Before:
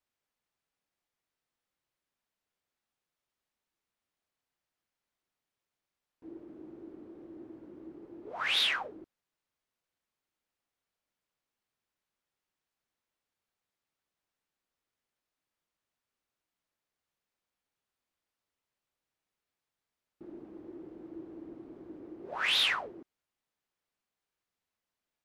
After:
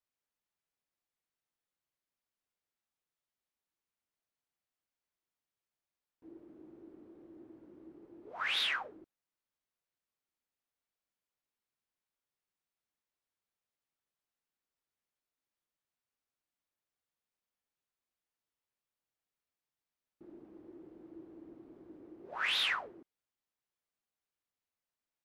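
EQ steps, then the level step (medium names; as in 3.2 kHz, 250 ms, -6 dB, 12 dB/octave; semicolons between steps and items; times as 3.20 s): dynamic bell 1.5 kHz, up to +5 dB, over -46 dBFS, Q 0.86; -6.5 dB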